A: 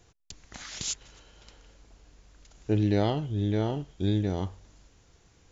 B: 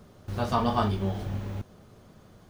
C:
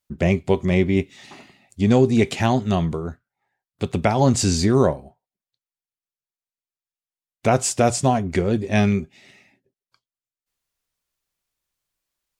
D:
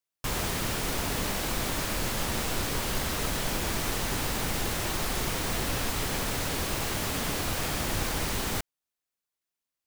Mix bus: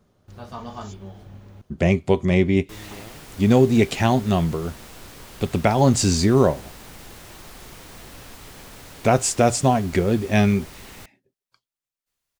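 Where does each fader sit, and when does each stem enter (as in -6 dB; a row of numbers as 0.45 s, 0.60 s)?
-18.0 dB, -10.0 dB, +0.5 dB, -12.0 dB; 0.00 s, 0.00 s, 1.60 s, 2.45 s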